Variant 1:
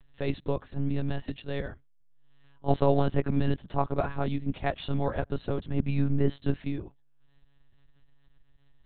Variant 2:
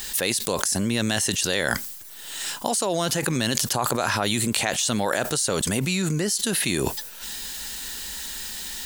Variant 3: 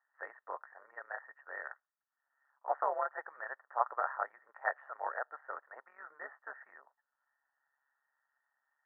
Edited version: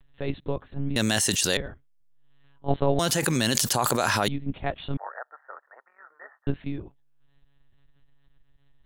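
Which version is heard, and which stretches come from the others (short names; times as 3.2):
1
0.96–1.57 from 2
2.99–4.28 from 2
4.97–6.47 from 3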